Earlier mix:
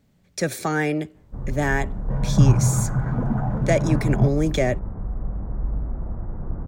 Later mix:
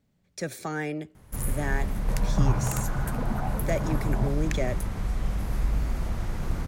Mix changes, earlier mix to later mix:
speech -8.5 dB; first sound: remove Gaussian low-pass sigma 7.6 samples; second sound: add bass shelf 360 Hz -11.5 dB

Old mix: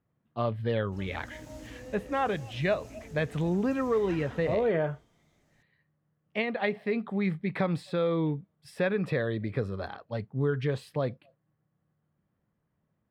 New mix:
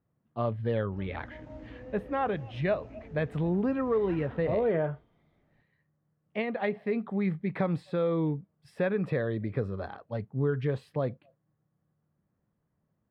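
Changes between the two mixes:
background: add low-pass 3 kHz 12 dB/octave; master: add treble shelf 2.8 kHz -12 dB

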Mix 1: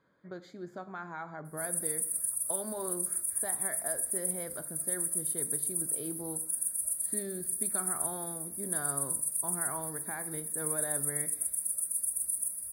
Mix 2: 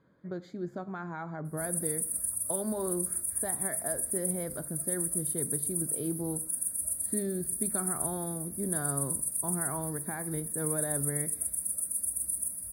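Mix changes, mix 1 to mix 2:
speech: send -6.0 dB; master: add bass shelf 450 Hz +11.5 dB

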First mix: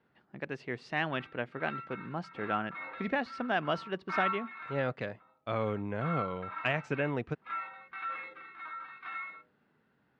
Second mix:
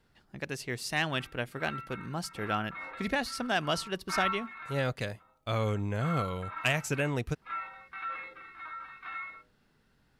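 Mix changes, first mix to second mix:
speech: remove band-pass 160–2300 Hz; master: remove distance through air 50 m

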